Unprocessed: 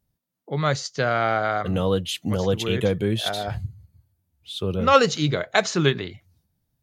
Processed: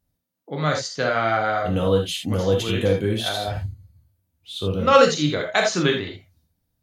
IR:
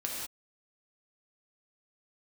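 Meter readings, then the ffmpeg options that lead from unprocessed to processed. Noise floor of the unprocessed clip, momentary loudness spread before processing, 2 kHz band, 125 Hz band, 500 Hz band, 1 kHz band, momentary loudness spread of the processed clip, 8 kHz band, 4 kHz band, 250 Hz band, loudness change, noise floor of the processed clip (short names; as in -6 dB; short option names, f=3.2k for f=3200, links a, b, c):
-77 dBFS, 13 LU, +1.5 dB, 0.0 dB, +2.5 dB, +1.0 dB, 13 LU, +1.5 dB, +1.5 dB, +1.0 dB, +1.5 dB, -75 dBFS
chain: -filter_complex "[1:a]atrim=start_sample=2205,atrim=end_sample=3969[a];[0:a][a]afir=irnorm=-1:irlink=0"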